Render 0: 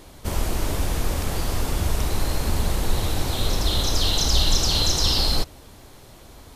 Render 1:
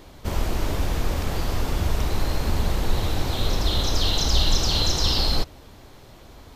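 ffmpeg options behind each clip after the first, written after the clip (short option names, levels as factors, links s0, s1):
-af "equalizer=f=10000:t=o:w=1:g=-9.5"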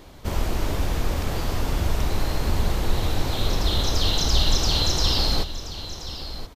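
-af "aecho=1:1:1027:0.237"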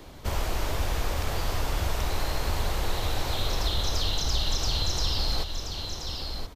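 -filter_complex "[0:a]acrossover=split=130|420[s0][s1][s2];[s0]acompressor=threshold=0.0631:ratio=4[s3];[s1]acompressor=threshold=0.00447:ratio=4[s4];[s2]acompressor=threshold=0.0355:ratio=4[s5];[s3][s4][s5]amix=inputs=3:normalize=0"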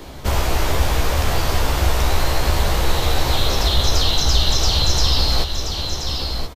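-filter_complex "[0:a]asplit=2[s0][s1];[s1]adelay=15,volume=0.531[s2];[s0][s2]amix=inputs=2:normalize=0,volume=2.82"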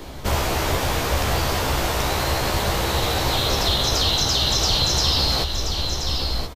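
-af "afftfilt=real='re*lt(hypot(re,im),1.41)':imag='im*lt(hypot(re,im),1.41)':win_size=1024:overlap=0.75"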